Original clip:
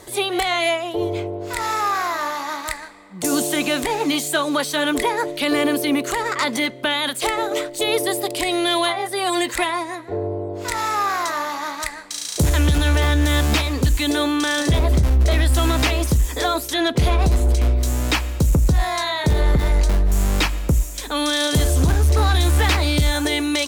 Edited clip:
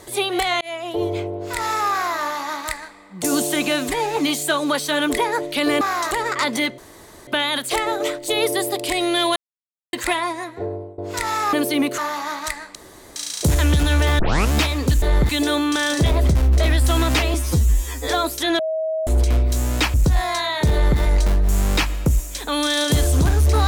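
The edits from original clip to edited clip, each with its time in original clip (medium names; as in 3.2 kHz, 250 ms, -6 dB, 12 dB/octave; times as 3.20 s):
0.61–0.92 s: fade in
3.72–4.02 s: stretch 1.5×
5.66–6.11 s: swap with 11.04–11.34 s
6.78 s: insert room tone 0.49 s
8.87–9.44 s: mute
10.08–10.49 s: fade out, to -20 dB
12.11 s: insert room tone 0.41 s
13.14 s: tape start 0.33 s
16.02–16.39 s: stretch 2×
16.90–17.38 s: bleep 637 Hz -20 dBFS
18.25–18.57 s: delete
19.35–19.62 s: copy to 13.97 s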